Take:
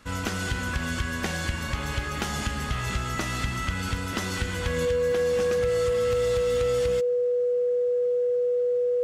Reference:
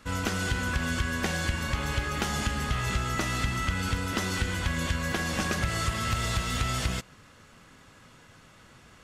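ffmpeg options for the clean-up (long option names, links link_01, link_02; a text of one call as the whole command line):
ffmpeg -i in.wav -af "bandreject=frequency=490:width=30,asetnsamples=nb_out_samples=441:pad=0,asendcmd='4.85 volume volume 5dB',volume=0dB" out.wav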